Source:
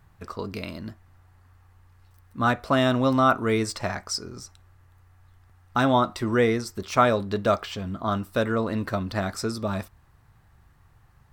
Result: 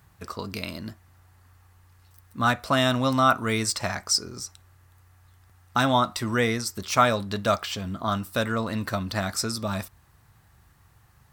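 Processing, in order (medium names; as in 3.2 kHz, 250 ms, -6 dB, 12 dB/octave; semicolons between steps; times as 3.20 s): dynamic bell 390 Hz, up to -7 dB, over -38 dBFS, Q 1.6; high-pass 48 Hz; treble shelf 3.6 kHz +9.5 dB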